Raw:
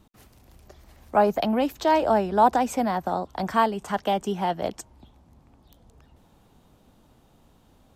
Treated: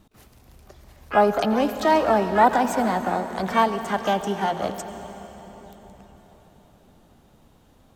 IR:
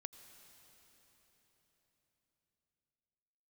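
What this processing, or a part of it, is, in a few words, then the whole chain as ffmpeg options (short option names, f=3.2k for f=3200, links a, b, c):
shimmer-style reverb: -filter_complex "[0:a]asettb=1/sr,asplit=3[a][b][c];[a]atrim=end=4.334[d];[b]atrim=start=4.33:end=4.75,asetpts=PTS-STARTPTS,afade=t=in:d=0.004:c=qsin,afade=t=out:st=0.416:d=0.004:c=qsin,bandreject=f=60:t=h:w=6,bandreject=f=120:t=h:w=6,bandreject=f=180:t=h:w=6,bandreject=f=240:t=h:w=6,bandreject=f=300:t=h:w=6,bandreject=f=360:t=h:w=6,bandreject=f=420:t=h:w=6,bandreject=f=480:t=h:w=6,bandreject=f=540:t=h:w=6,bandreject=f=600:t=h:w=6[e];[c]atrim=start=4.746[f];[d][e]acrossfade=d=0.004:c1=hsin:c2=qsin[g];[g][f]acrossfade=d=0.004:c1=qsin:c2=hsin,asplit=2[h][i];[i]asetrate=88200,aresample=44100,atempo=0.5,volume=-12dB[j];[h][j]amix=inputs=2:normalize=0[k];[1:a]atrim=start_sample=2205[l];[k][l]afir=irnorm=-1:irlink=0,volume=6.5dB"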